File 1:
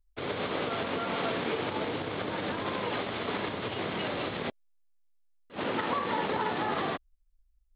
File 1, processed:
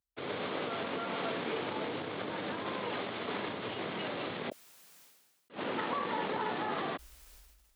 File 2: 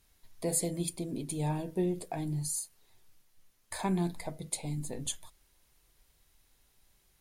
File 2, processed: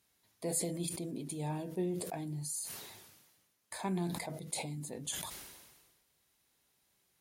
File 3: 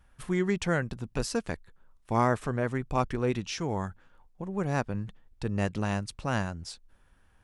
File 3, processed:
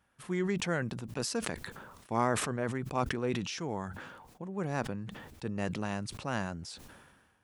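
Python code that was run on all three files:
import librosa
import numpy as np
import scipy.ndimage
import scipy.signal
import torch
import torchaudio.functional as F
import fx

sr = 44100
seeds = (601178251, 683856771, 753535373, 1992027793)

y = scipy.signal.sosfilt(scipy.signal.butter(2, 130.0, 'highpass', fs=sr, output='sos'), x)
y = fx.sustainer(y, sr, db_per_s=41.0)
y = y * 10.0 ** (-4.5 / 20.0)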